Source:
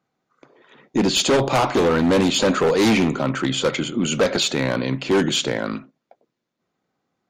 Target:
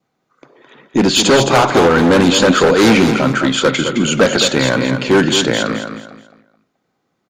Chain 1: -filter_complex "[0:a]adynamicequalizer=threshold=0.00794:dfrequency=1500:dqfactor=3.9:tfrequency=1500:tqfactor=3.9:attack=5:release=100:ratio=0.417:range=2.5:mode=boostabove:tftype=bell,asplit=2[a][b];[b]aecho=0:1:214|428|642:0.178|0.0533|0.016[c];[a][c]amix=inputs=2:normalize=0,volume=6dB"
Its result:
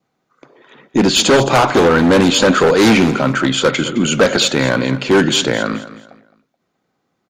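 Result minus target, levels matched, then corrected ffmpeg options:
echo-to-direct -7.5 dB
-filter_complex "[0:a]adynamicequalizer=threshold=0.00794:dfrequency=1500:dqfactor=3.9:tfrequency=1500:tqfactor=3.9:attack=5:release=100:ratio=0.417:range=2.5:mode=boostabove:tftype=bell,asplit=2[a][b];[b]aecho=0:1:214|428|642|856:0.422|0.127|0.038|0.0114[c];[a][c]amix=inputs=2:normalize=0,volume=6dB"

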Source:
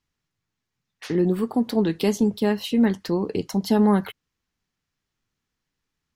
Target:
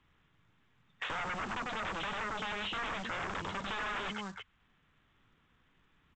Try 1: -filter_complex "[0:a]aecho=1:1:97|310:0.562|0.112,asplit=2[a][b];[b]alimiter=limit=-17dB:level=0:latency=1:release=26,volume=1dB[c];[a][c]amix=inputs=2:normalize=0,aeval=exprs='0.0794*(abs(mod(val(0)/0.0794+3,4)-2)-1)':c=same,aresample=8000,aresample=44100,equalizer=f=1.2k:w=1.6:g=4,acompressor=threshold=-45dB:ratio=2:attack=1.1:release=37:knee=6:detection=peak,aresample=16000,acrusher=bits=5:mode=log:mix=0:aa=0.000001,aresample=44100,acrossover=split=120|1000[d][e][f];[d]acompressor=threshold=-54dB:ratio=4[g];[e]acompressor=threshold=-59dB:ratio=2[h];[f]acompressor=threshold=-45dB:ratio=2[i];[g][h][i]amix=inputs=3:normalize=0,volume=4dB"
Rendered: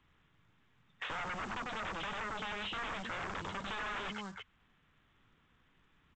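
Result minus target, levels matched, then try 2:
compressor: peak gain reduction +5 dB
-filter_complex "[0:a]aecho=1:1:97|310:0.562|0.112,asplit=2[a][b];[b]alimiter=limit=-17dB:level=0:latency=1:release=26,volume=1dB[c];[a][c]amix=inputs=2:normalize=0,aeval=exprs='0.0794*(abs(mod(val(0)/0.0794+3,4)-2)-1)':c=same,aresample=8000,aresample=44100,equalizer=f=1.2k:w=1.6:g=4,acompressor=threshold=-35dB:ratio=2:attack=1.1:release=37:knee=6:detection=peak,aresample=16000,acrusher=bits=5:mode=log:mix=0:aa=0.000001,aresample=44100,acrossover=split=120|1000[d][e][f];[d]acompressor=threshold=-54dB:ratio=4[g];[e]acompressor=threshold=-59dB:ratio=2[h];[f]acompressor=threshold=-45dB:ratio=2[i];[g][h][i]amix=inputs=3:normalize=0,volume=4dB"

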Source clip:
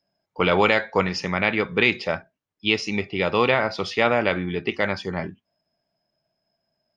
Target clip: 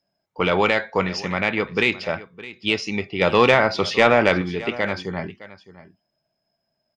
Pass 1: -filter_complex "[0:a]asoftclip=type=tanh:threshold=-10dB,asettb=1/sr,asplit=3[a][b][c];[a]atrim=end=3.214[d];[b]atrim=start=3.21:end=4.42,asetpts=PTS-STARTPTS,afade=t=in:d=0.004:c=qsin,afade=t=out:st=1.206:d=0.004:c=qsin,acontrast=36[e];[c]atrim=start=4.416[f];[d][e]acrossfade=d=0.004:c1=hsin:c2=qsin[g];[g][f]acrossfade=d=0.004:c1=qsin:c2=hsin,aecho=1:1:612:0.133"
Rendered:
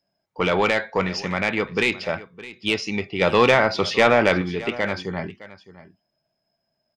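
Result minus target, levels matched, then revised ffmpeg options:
soft clip: distortion +10 dB
-filter_complex "[0:a]asoftclip=type=tanh:threshold=-3.5dB,asettb=1/sr,asplit=3[a][b][c];[a]atrim=end=3.214[d];[b]atrim=start=3.21:end=4.42,asetpts=PTS-STARTPTS,afade=t=in:d=0.004:c=qsin,afade=t=out:st=1.206:d=0.004:c=qsin,acontrast=36[e];[c]atrim=start=4.416[f];[d][e]acrossfade=d=0.004:c1=hsin:c2=qsin[g];[g][f]acrossfade=d=0.004:c1=qsin:c2=hsin,aecho=1:1:612:0.133"

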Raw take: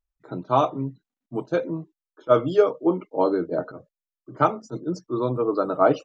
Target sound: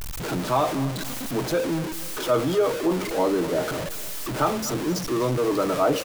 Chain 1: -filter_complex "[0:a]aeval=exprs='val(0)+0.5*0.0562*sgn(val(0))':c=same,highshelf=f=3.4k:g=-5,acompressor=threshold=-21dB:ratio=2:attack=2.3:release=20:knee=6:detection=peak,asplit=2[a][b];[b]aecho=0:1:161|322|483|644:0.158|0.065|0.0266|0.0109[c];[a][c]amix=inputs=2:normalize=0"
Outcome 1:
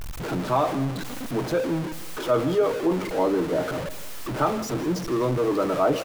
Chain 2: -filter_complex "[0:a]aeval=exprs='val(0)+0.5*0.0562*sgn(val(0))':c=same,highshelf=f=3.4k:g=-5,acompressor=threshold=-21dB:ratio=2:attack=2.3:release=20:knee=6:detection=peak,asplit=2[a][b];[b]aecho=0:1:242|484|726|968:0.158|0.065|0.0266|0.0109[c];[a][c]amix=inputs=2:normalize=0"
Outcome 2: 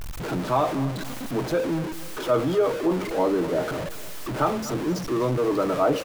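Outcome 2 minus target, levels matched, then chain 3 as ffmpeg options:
8000 Hz band -6.0 dB
-filter_complex "[0:a]aeval=exprs='val(0)+0.5*0.0562*sgn(val(0))':c=same,highshelf=f=3.4k:g=3,acompressor=threshold=-21dB:ratio=2:attack=2.3:release=20:knee=6:detection=peak,asplit=2[a][b];[b]aecho=0:1:242|484|726|968:0.158|0.065|0.0266|0.0109[c];[a][c]amix=inputs=2:normalize=0"

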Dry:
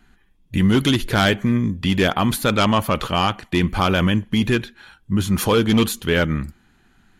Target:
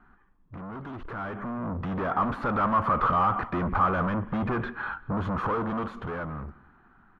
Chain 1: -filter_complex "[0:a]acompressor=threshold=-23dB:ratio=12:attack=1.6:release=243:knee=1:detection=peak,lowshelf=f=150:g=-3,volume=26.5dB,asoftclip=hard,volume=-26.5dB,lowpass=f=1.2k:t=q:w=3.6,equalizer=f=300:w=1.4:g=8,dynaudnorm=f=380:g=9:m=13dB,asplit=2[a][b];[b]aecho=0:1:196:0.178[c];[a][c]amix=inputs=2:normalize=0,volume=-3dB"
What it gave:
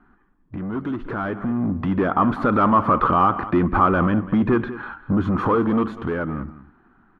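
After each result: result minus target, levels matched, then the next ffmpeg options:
overloaded stage: distortion -9 dB; echo-to-direct +7.5 dB; 250 Hz band +3.5 dB
-filter_complex "[0:a]acompressor=threshold=-23dB:ratio=12:attack=1.6:release=243:knee=1:detection=peak,lowshelf=f=150:g=-3,volume=36.5dB,asoftclip=hard,volume=-36.5dB,lowpass=f=1.2k:t=q:w=3.6,equalizer=f=300:w=1.4:g=8,dynaudnorm=f=380:g=9:m=13dB,asplit=2[a][b];[b]aecho=0:1:196:0.178[c];[a][c]amix=inputs=2:normalize=0,volume=-3dB"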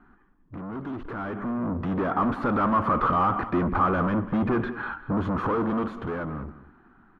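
echo-to-direct +7.5 dB; 250 Hz band +3.0 dB
-filter_complex "[0:a]acompressor=threshold=-23dB:ratio=12:attack=1.6:release=243:knee=1:detection=peak,lowshelf=f=150:g=-3,volume=36.5dB,asoftclip=hard,volume=-36.5dB,lowpass=f=1.2k:t=q:w=3.6,equalizer=f=300:w=1.4:g=8,dynaudnorm=f=380:g=9:m=13dB,asplit=2[a][b];[b]aecho=0:1:196:0.075[c];[a][c]amix=inputs=2:normalize=0,volume=-3dB"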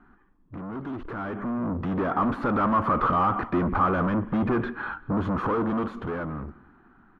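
250 Hz band +3.0 dB
-filter_complex "[0:a]acompressor=threshold=-23dB:ratio=12:attack=1.6:release=243:knee=1:detection=peak,lowshelf=f=150:g=-3,volume=36.5dB,asoftclip=hard,volume=-36.5dB,lowpass=f=1.2k:t=q:w=3.6,dynaudnorm=f=380:g=9:m=13dB,asplit=2[a][b];[b]aecho=0:1:196:0.075[c];[a][c]amix=inputs=2:normalize=0,volume=-3dB"

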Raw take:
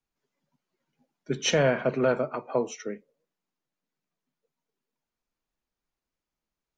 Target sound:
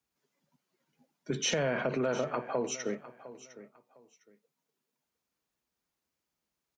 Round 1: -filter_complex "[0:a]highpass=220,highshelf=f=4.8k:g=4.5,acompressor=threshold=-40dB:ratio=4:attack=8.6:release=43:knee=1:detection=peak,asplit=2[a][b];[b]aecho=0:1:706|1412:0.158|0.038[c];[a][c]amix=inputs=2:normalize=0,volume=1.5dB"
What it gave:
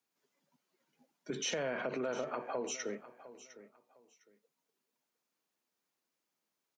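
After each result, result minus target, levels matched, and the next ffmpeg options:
125 Hz band -6.5 dB; compressor: peak gain reduction +6 dB
-filter_complex "[0:a]highpass=75,highshelf=f=4.8k:g=4.5,acompressor=threshold=-40dB:ratio=4:attack=8.6:release=43:knee=1:detection=peak,asplit=2[a][b];[b]aecho=0:1:706|1412:0.158|0.038[c];[a][c]amix=inputs=2:normalize=0,volume=1.5dB"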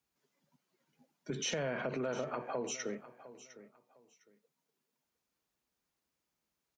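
compressor: peak gain reduction +6 dB
-filter_complex "[0:a]highpass=75,highshelf=f=4.8k:g=4.5,acompressor=threshold=-32dB:ratio=4:attack=8.6:release=43:knee=1:detection=peak,asplit=2[a][b];[b]aecho=0:1:706|1412:0.158|0.038[c];[a][c]amix=inputs=2:normalize=0,volume=1.5dB"

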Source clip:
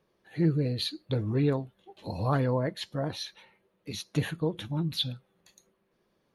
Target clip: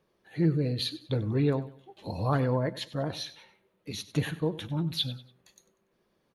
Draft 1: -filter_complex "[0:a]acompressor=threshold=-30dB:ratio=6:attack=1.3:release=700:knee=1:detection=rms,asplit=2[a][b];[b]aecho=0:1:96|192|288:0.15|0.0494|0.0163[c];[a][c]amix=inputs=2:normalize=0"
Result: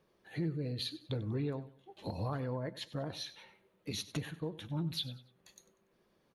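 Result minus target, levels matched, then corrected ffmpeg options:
compressor: peak gain reduction +12.5 dB
-filter_complex "[0:a]asplit=2[a][b];[b]aecho=0:1:96|192|288:0.15|0.0494|0.0163[c];[a][c]amix=inputs=2:normalize=0"

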